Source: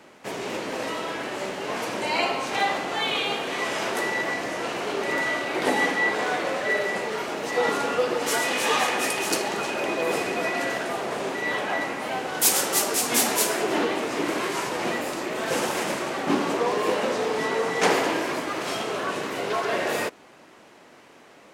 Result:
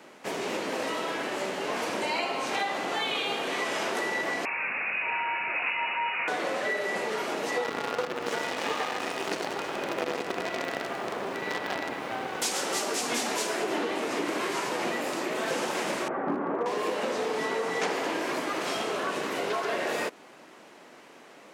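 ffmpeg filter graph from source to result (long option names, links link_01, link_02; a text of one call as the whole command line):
ffmpeg -i in.wav -filter_complex "[0:a]asettb=1/sr,asplit=3[link_01][link_02][link_03];[link_01]atrim=end=4.454[link_04];[link_02]atrim=start=4.45:end=6.28,asetpts=PTS-STARTPTS,afade=type=in:duration=0.004:curve=qsin,afade=type=out:start_time=1.826:duration=0.004:curve=qsin,aeval=exprs='clip(val(0),-1,0.0531)':channel_layout=same,lowpass=frequency=2500:width_type=q:width=0.5098,lowpass=frequency=2500:width_type=q:width=0.6013,lowpass=frequency=2500:width_type=q:width=0.9,lowpass=frequency=2500:width_type=q:width=2.563,afreqshift=-2900[link_05];[link_03]atrim=start=6.276[link_06];[link_04][link_05]acrossfade=duration=0.004:curve1=hsin:curve2=qsin[link_07];[link_07][link_06]acrossfade=duration=0.004:curve1=qsin:curve2=hsin,asettb=1/sr,asplit=3[link_08][link_09][link_10];[link_08]atrim=end=7.644[link_11];[link_09]atrim=start=7.64:end=12.42,asetpts=PTS-STARTPTS,afade=type=in:duration=0.004:curve=qsin,afade=type=out:start_time=4.776:duration=0.004:curve=qsin,aecho=1:1:97|194|291|388|485|582:0.562|0.253|0.114|0.0512|0.0231|0.0104,atrim=end_sample=210798,acrusher=bits=4:dc=4:mix=0:aa=0.000001,lowpass=frequency=2400:poles=1[link_12];[link_10]atrim=start=12.416[link_13];[link_11][link_12]acrossfade=duration=0.004:curve1=hsin:curve2=qsin[link_14];[link_14][link_13]acrossfade=duration=0.004:curve1=qsin:curve2=hsin,asettb=1/sr,asplit=3[link_15][link_16][link_17];[link_15]atrim=end=16.084[link_18];[link_16]atrim=start=16.08:end=16.66,asetpts=PTS-STARTPTS,afade=type=in:duration=0.004:curve=qsin,afade=type=out:start_time=0.576:duration=0.004:curve=qsin,lowpass=frequency=1600:width=0.5412,lowpass=frequency=1600:width=1.3066,aeval=exprs='clip(val(0),-1,0.126)':channel_layout=same[link_19];[link_17]atrim=start=16.656[link_20];[link_18][link_19]acrossfade=duration=0.004:curve1=hsin:curve2=qsin[link_21];[link_21][link_20]acrossfade=duration=0.004:curve1=qsin:curve2=hsin,acrossover=split=8000[link_22][link_23];[link_23]acompressor=threshold=-45dB:ratio=4:attack=1:release=60[link_24];[link_22][link_24]amix=inputs=2:normalize=0,highpass=160,acompressor=threshold=-26dB:ratio=6" out.wav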